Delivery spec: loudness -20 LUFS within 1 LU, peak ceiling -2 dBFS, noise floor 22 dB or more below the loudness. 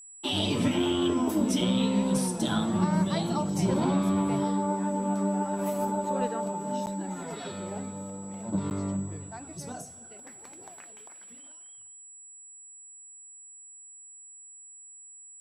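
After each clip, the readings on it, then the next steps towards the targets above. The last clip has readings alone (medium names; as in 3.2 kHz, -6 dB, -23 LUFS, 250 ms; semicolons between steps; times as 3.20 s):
dropouts 2; longest dropout 9.6 ms; steady tone 7.8 kHz; tone level -46 dBFS; loudness -28.5 LUFS; peak level -13.0 dBFS; loudness target -20.0 LUFS
-> interpolate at 6.86/8.70 s, 9.6 ms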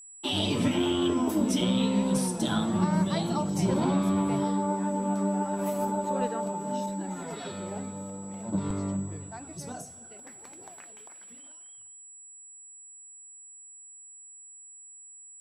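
dropouts 0; steady tone 7.8 kHz; tone level -46 dBFS
-> band-stop 7.8 kHz, Q 30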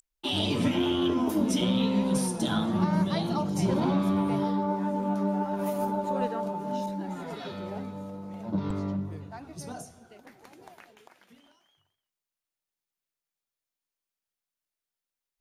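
steady tone not found; loudness -28.5 LUFS; peak level -13.0 dBFS; loudness target -20.0 LUFS
-> trim +8.5 dB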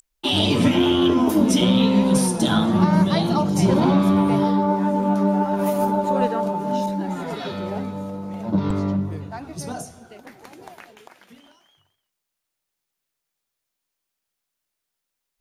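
loudness -20.0 LUFS; peak level -4.5 dBFS; noise floor -82 dBFS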